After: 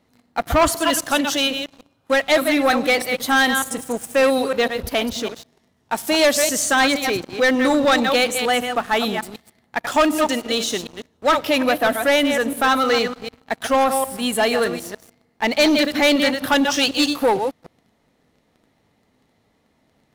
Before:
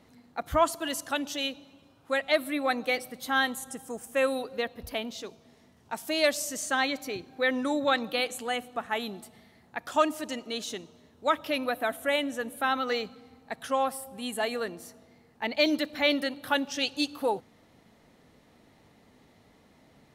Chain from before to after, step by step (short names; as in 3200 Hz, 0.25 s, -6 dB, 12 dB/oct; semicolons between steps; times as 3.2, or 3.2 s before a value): reverse delay 0.151 s, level -8.5 dB; sample leveller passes 3; gain +1.5 dB